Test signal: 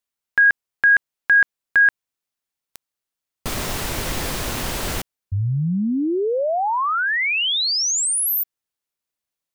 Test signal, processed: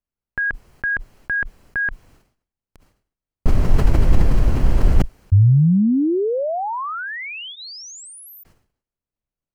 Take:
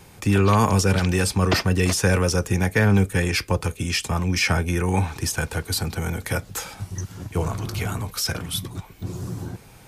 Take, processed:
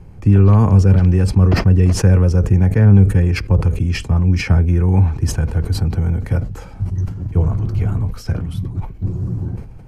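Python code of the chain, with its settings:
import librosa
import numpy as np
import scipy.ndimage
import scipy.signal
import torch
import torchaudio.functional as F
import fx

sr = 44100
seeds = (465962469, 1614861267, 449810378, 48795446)

y = fx.tilt_eq(x, sr, slope=-4.5)
y = fx.notch(y, sr, hz=3600.0, q=9.4)
y = fx.sustainer(y, sr, db_per_s=110.0)
y = y * librosa.db_to_amplitude(-4.5)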